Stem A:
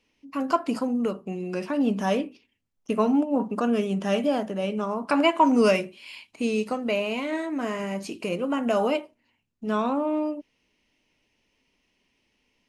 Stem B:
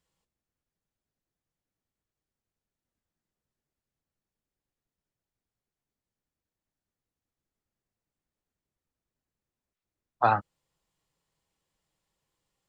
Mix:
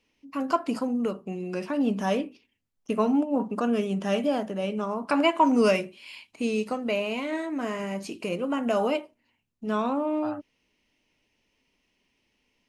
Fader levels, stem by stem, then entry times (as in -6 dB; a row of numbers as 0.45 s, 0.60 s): -1.5 dB, -17.0 dB; 0.00 s, 0.00 s